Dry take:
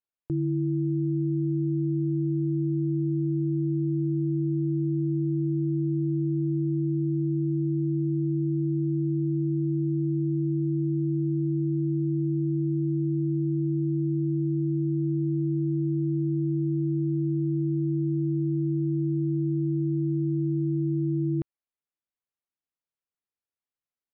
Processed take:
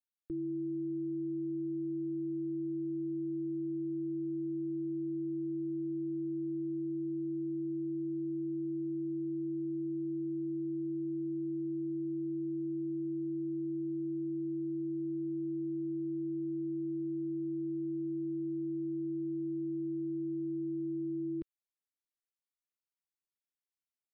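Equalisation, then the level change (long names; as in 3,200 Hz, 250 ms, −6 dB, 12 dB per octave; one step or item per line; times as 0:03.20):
phaser with its sweep stopped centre 310 Hz, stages 4
−7.0 dB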